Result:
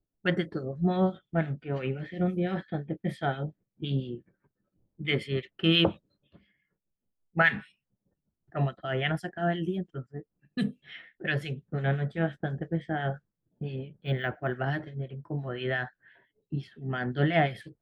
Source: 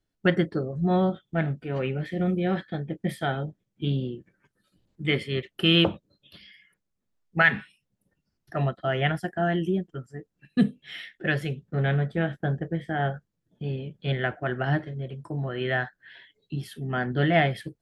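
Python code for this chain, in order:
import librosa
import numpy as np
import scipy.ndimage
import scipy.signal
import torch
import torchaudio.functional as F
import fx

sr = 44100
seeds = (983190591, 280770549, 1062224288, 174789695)

y = fx.env_lowpass(x, sr, base_hz=750.0, full_db=-22.5)
y = fx.harmonic_tremolo(y, sr, hz=5.8, depth_pct=70, crossover_hz=1600.0)
y = fx.resample_linear(y, sr, factor=2, at=(13.96, 14.56))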